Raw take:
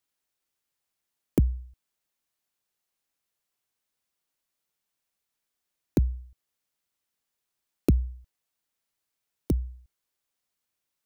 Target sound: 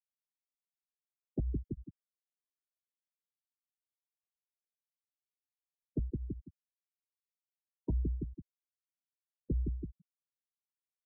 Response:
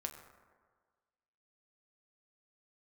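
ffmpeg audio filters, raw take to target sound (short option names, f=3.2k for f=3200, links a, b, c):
-filter_complex "[0:a]equalizer=f=72:w=3.5:g=-14.5,asplit=2[a][b];[b]adelay=166,lowpass=f=2k:p=1,volume=-17dB,asplit=2[c][d];[d]adelay=166,lowpass=f=2k:p=1,volume=0.32,asplit=2[e][f];[f]adelay=166,lowpass=f=2k:p=1,volume=0.32[g];[c][e][g]amix=inputs=3:normalize=0[h];[a][h]amix=inputs=2:normalize=0,asoftclip=type=tanh:threshold=-26.5dB,areverse,acompressor=threshold=-46dB:ratio=4,areverse,flanger=delay=6.9:depth=6.4:regen=-66:speed=0.67:shape=triangular,afftfilt=real='re*gte(hypot(re,im),0.00631)':imag='im*gte(hypot(re,im),0.00631)':win_size=1024:overlap=0.75,volume=17dB"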